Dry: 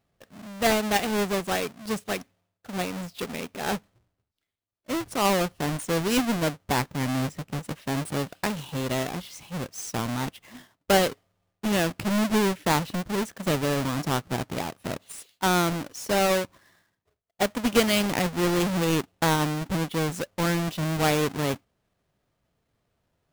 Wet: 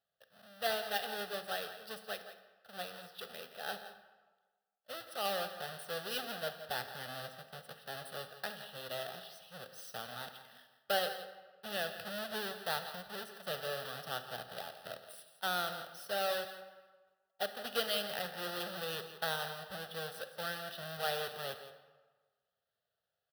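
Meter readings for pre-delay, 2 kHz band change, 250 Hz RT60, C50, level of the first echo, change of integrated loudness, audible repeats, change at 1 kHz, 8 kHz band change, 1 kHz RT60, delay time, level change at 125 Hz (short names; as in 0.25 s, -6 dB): 34 ms, -10.0 dB, 1.2 s, 8.5 dB, -13.0 dB, -13.0 dB, 1, -12.5 dB, -16.0 dB, 1.4 s, 0.169 s, -24.0 dB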